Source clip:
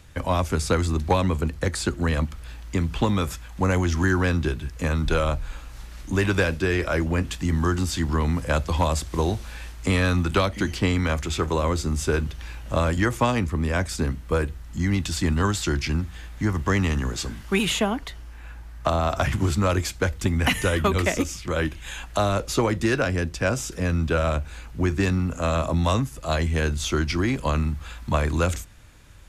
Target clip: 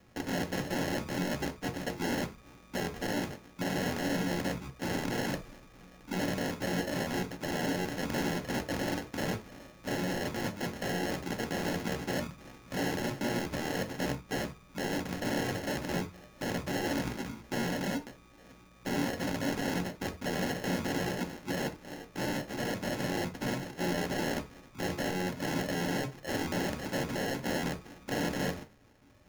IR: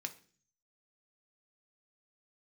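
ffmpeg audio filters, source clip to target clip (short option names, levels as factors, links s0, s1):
-filter_complex "[0:a]acrusher=samples=37:mix=1:aa=0.000001,aeval=exprs='(mod(9.44*val(0)+1,2)-1)/9.44':c=same[s0];[1:a]atrim=start_sample=2205,atrim=end_sample=3969[s1];[s0][s1]afir=irnorm=-1:irlink=0,volume=0.631"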